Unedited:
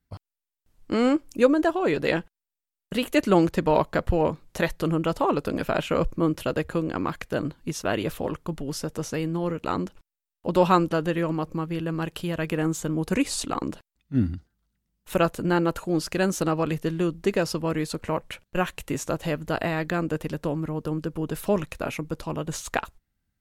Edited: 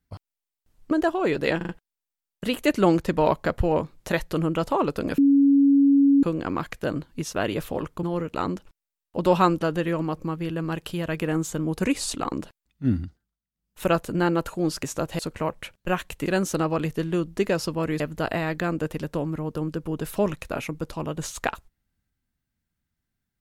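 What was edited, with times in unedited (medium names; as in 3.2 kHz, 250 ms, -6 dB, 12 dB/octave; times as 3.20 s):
0.91–1.52 s: delete
2.18 s: stutter 0.04 s, 4 plays
5.67–6.72 s: bleep 279 Hz -13.5 dBFS
8.52–9.33 s: delete
14.26–15.22 s: dip -17.5 dB, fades 0.40 s equal-power
16.13–17.87 s: swap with 18.94–19.30 s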